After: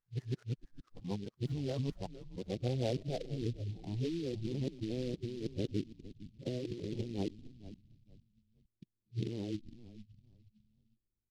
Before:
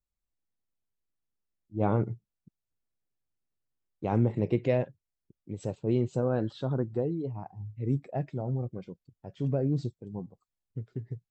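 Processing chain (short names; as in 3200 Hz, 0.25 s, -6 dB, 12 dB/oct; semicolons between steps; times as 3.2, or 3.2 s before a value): whole clip reversed; low-pass sweep 1700 Hz -> 350 Hz, 1.21–3.58; negative-ratio compressor -31 dBFS, ratio -1; frequency-shifting echo 0.458 s, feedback 33%, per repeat -110 Hz, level -13.5 dB; noise-modulated delay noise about 3400 Hz, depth 0.063 ms; gain -5.5 dB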